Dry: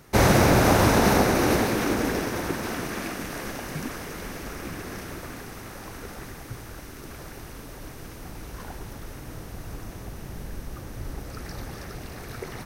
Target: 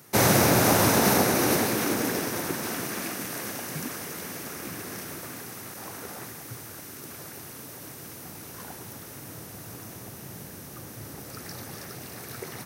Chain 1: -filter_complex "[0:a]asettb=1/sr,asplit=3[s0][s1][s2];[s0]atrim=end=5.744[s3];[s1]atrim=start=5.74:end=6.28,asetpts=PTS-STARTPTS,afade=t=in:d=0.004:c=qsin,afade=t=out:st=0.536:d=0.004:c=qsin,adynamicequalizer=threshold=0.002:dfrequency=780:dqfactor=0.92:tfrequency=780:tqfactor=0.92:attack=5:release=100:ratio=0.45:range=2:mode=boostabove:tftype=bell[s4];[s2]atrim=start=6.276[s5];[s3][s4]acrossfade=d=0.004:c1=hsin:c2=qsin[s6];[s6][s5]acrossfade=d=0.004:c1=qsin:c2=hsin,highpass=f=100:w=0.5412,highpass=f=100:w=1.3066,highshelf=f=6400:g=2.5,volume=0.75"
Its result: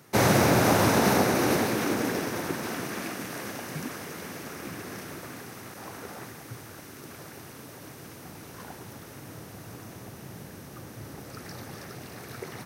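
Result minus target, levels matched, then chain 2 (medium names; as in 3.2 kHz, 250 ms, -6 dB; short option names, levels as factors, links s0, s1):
8 kHz band -5.0 dB
-filter_complex "[0:a]asettb=1/sr,asplit=3[s0][s1][s2];[s0]atrim=end=5.744[s3];[s1]atrim=start=5.74:end=6.28,asetpts=PTS-STARTPTS,afade=t=in:d=0.004:c=qsin,afade=t=out:st=0.536:d=0.004:c=qsin,adynamicequalizer=threshold=0.002:dfrequency=780:dqfactor=0.92:tfrequency=780:tqfactor=0.92:attack=5:release=100:ratio=0.45:range=2:mode=boostabove:tftype=bell[s4];[s2]atrim=start=6.276[s5];[s3][s4]acrossfade=d=0.004:c1=hsin:c2=qsin[s6];[s6][s5]acrossfade=d=0.004:c1=qsin:c2=hsin,highpass=f=100:w=0.5412,highpass=f=100:w=1.3066,highshelf=f=6400:g=12.5,volume=0.75"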